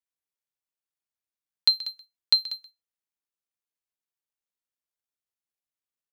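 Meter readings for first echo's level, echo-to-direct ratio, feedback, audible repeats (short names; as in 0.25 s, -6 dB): -17.0 dB, -17.0 dB, no steady repeat, 1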